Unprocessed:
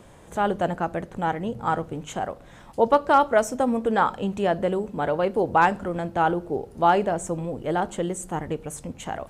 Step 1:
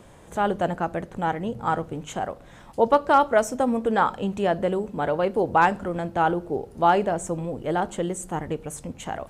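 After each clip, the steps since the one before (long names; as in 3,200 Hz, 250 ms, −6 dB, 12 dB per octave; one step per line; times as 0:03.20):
no processing that can be heard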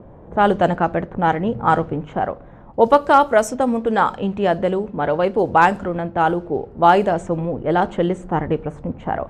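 low-pass that shuts in the quiet parts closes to 700 Hz, open at −16.5 dBFS
speech leveller within 4 dB 2 s
level +5 dB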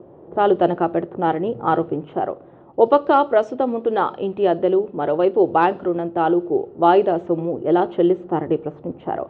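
loudspeaker in its box 160–3,600 Hz, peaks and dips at 210 Hz −8 dB, 360 Hz +9 dB, 990 Hz −4 dB, 1,600 Hz −7 dB, 2,200 Hz −8 dB
level −1 dB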